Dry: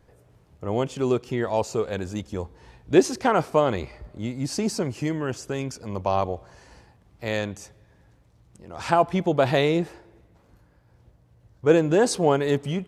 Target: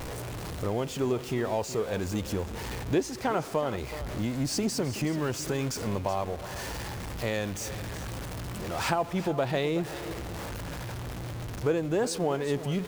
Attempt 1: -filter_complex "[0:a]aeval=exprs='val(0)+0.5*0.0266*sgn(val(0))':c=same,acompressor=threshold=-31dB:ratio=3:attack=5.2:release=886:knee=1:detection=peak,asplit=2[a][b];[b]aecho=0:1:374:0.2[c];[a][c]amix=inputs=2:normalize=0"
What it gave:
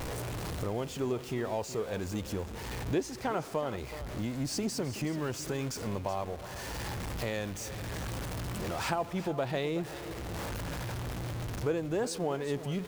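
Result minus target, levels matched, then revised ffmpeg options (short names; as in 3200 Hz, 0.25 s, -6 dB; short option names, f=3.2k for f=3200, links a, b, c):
compressor: peak gain reduction +4.5 dB
-filter_complex "[0:a]aeval=exprs='val(0)+0.5*0.0266*sgn(val(0))':c=same,acompressor=threshold=-24.5dB:ratio=3:attack=5.2:release=886:knee=1:detection=peak,asplit=2[a][b];[b]aecho=0:1:374:0.2[c];[a][c]amix=inputs=2:normalize=0"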